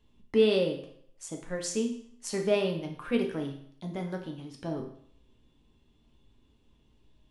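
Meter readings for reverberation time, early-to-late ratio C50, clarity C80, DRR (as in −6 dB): 0.65 s, 7.5 dB, 11.0 dB, 2.0 dB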